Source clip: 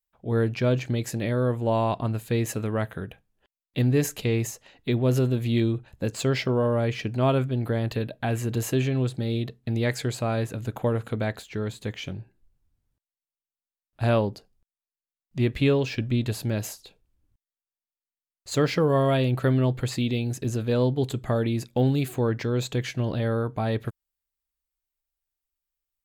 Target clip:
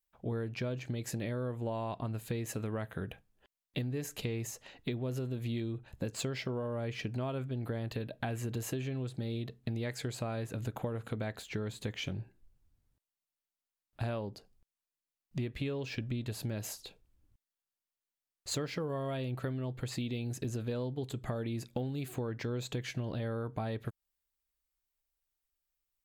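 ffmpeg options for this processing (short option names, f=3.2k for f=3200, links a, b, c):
-af "acompressor=threshold=-33dB:ratio=12"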